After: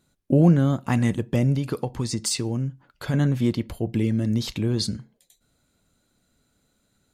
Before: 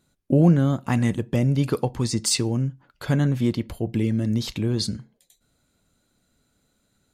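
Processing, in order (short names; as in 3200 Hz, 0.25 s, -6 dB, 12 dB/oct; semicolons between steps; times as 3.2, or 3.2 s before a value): 1.55–3.14 compressor, threshold -22 dBFS, peak gain reduction 6 dB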